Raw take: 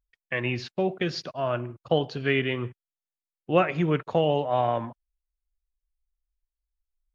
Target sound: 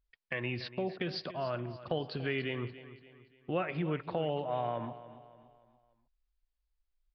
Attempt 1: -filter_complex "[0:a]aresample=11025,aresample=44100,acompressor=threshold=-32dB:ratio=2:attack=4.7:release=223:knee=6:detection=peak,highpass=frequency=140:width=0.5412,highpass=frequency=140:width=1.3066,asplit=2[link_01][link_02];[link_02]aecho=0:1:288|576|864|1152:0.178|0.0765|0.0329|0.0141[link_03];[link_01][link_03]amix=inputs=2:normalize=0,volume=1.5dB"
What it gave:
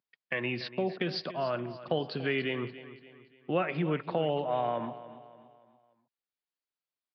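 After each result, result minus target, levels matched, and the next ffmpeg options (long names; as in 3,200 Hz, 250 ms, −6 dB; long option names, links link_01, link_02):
downward compressor: peak gain reduction −4 dB; 125 Hz band −2.5 dB
-filter_complex "[0:a]aresample=11025,aresample=44100,acompressor=threshold=-40dB:ratio=2:attack=4.7:release=223:knee=6:detection=peak,highpass=frequency=140:width=0.5412,highpass=frequency=140:width=1.3066,asplit=2[link_01][link_02];[link_02]aecho=0:1:288|576|864|1152:0.178|0.0765|0.0329|0.0141[link_03];[link_01][link_03]amix=inputs=2:normalize=0,volume=1.5dB"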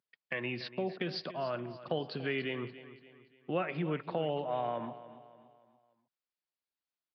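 125 Hz band −2.5 dB
-filter_complex "[0:a]aresample=11025,aresample=44100,acompressor=threshold=-40dB:ratio=2:attack=4.7:release=223:knee=6:detection=peak,asplit=2[link_01][link_02];[link_02]aecho=0:1:288|576|864|1152:0.178|0.0765|0.0329|0.0141[link_03];[link_01][link_03]amix=inputs=2:normalize=0,volume=1.5dB"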